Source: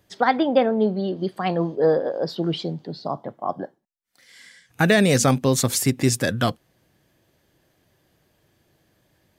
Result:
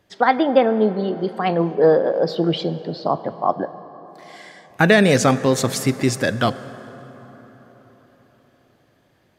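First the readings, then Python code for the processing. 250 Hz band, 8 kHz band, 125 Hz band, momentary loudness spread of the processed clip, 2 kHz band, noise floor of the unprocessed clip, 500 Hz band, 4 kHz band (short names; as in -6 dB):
+2.5 dB, -3.0 dB, +0.5 dB, 11 LU, +4.0 dB, -67 dBFS, +4.0 dB, +1.5 dB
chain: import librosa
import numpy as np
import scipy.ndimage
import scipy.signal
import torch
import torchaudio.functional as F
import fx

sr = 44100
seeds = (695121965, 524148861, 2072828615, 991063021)

y = fx.high_shelf(x, sr, hz=5700.0, db=-11.5)
y = fx.rider(y, sr, range_db=4, speed_s=2.0)
y = fx.low_shelf(y, sr, hz=210.0, db=-6.0)
y = fx.rev_plate(y, sr, seeds[0], rt60_s=4.6, hf_ratio=0.5, predelay_ms=0, drr_db=14.0)
y = y * 10.0 ** (4.0 / 20.0)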